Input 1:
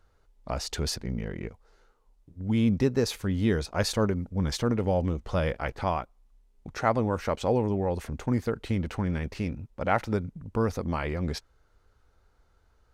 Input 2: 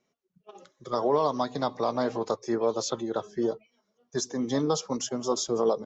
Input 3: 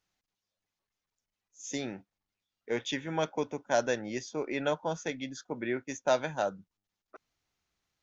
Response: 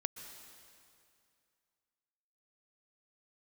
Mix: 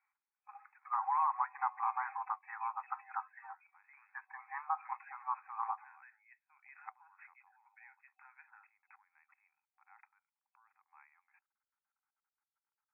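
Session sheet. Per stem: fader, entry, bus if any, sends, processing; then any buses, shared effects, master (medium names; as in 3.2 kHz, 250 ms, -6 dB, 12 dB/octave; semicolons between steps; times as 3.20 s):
-15.5 dB, 0.00 s, no send, level held to a coarse grid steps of 21 dB
-1.0 dB, 0.00 s, no send, none
-17.5 dB, 2.15 s, no send, peak limiter -21.5 dBFS, peak gain reduction 8 dB; Chebyshev high-pass 1.5 kHz, order 2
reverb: none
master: FFT band-pass 760–2600 Hz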